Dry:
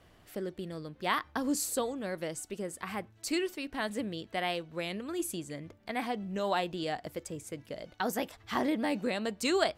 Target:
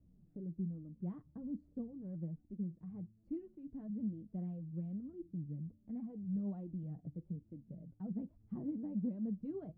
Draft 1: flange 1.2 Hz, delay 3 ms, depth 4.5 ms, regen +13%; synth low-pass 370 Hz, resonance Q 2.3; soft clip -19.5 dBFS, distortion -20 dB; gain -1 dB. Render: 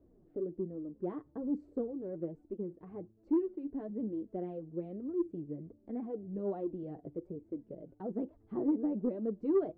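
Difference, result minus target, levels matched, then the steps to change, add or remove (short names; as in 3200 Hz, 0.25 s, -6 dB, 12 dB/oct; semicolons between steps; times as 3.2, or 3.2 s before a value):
500 Hz band +10.5 dB
change: synth low-pass 180 Hz, resonance Q 2.3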